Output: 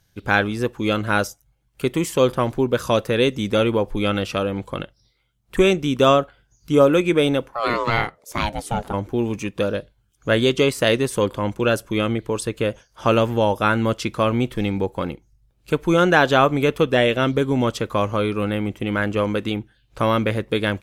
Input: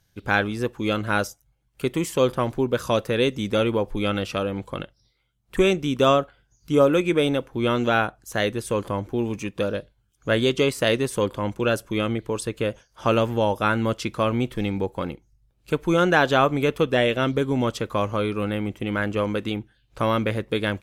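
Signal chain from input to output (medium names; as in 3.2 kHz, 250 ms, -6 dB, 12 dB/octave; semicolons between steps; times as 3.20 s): 7.51–8.92 s: ring modulator 1 kHz -> 290 Hz; trim +3 dB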